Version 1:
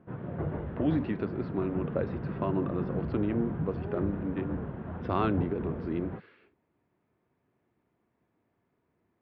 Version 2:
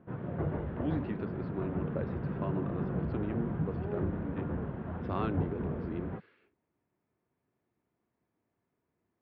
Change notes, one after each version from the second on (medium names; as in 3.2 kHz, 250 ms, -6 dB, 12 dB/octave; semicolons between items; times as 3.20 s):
speech -6.5 dB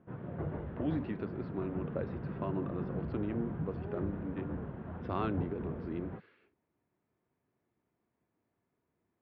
background -4.5 dB